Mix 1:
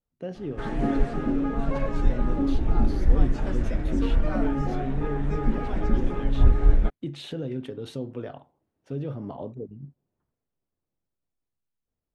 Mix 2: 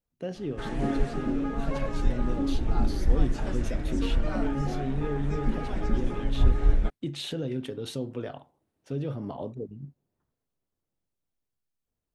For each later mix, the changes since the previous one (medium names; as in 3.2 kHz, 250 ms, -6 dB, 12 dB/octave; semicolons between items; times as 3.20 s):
background -3.5 dB; master: add treble shelf 3.5 kHz +9.5 dB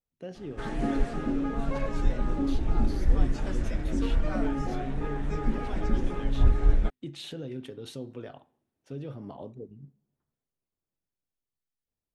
speech -6.5 dB; reverb: on, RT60 0.65 s